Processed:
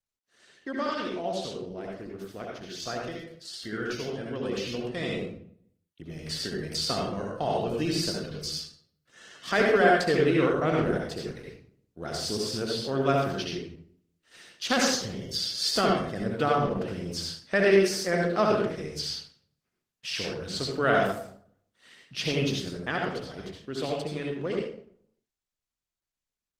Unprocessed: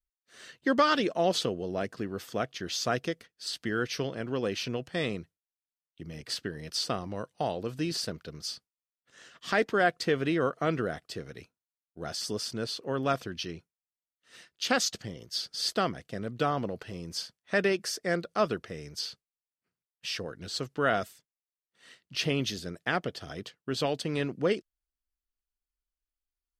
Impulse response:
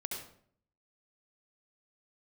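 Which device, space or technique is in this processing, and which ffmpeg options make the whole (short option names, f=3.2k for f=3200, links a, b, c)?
speakerphone in a meeting room: -filter_complex "[1:a]atrim=start_sample=2205[a];[0:a][a]afir=irnorm=-1:irlink=0,dynaudnorm=f=870:g=11:m=15dB,volume=-6.5dB" -ar 48000 -c:a libopus -b:a 16k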